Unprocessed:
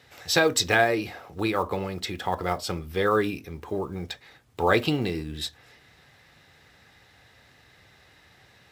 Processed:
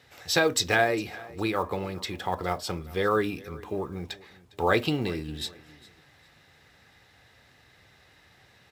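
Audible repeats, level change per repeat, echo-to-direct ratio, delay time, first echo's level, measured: 2, -11.0 dB, -20.5 dB, 0.406 s, -21.0 dB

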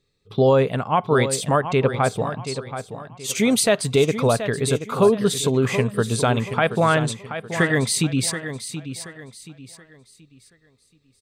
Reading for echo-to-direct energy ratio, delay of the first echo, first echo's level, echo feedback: -10.0 dB, 0.728 s, -10.5 dB, 33%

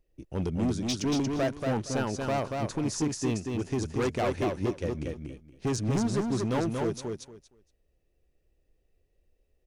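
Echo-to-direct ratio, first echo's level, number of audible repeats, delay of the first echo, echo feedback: -4.0 dB, -4.0 dB, 3, 0.233 s, 19%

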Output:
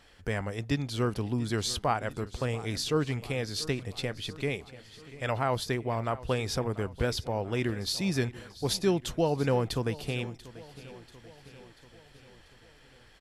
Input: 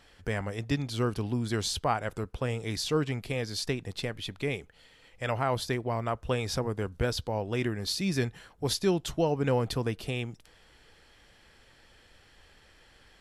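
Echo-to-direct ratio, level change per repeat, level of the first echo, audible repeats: -16.0 dB, -4.5 dB, -18.0 dB, 4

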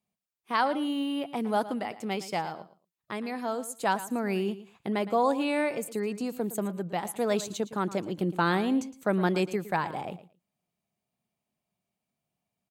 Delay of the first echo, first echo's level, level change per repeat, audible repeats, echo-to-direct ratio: 0.113 s, -15.0 dB, -15.5 dB, 2, -15.0 dB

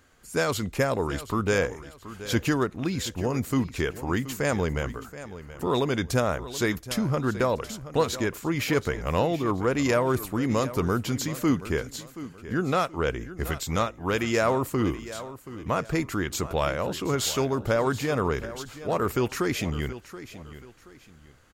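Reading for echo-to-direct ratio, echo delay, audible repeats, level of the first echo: -14.0 dB, 0.727 s, 2, -14.5 dB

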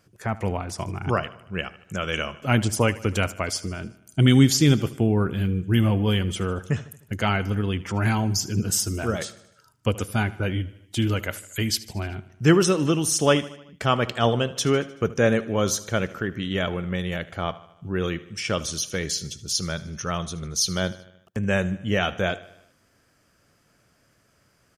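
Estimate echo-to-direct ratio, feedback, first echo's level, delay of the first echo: -16.5 dB, 58%, -18.5 dB, 76 ms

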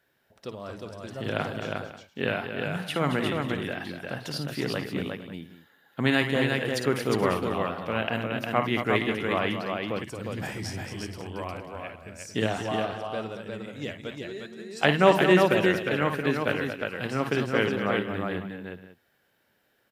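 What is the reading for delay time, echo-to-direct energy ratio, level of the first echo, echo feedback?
55 ms, -1.5 dB, -8.0 dB, no steady repeat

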